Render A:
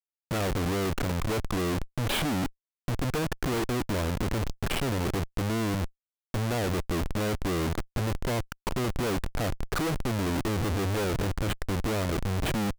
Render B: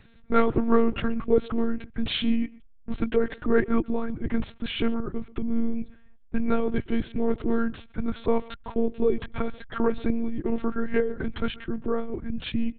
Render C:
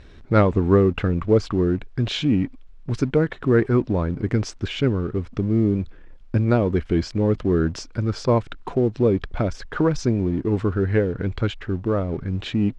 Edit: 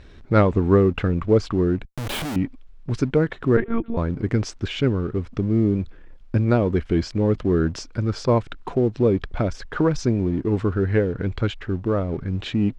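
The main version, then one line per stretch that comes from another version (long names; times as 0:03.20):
C
0:01.85–0:02.36: punch in from A
0:03.57–0:03.97: punch in from B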